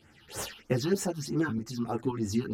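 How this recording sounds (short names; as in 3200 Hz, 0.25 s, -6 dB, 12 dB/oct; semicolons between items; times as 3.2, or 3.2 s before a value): phasing stages 6, 3.2 Hz, lowest notch 510–4500 Hz; tremolo saw up 1.9 Hz, depth 60%; a shimmering, thickened sound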